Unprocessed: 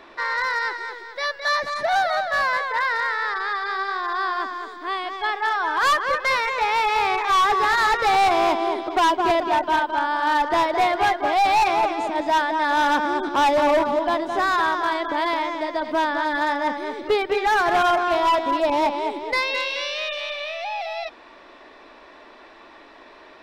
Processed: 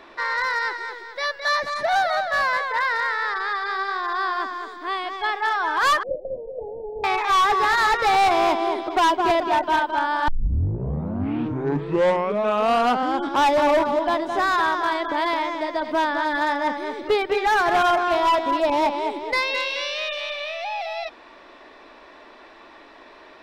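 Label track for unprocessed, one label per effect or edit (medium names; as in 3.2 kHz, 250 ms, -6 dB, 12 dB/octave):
6.030000	7.040000	steep low-pass 720 Hz 96 dB/octave
10.280000	10.280000	tape start 3.14 s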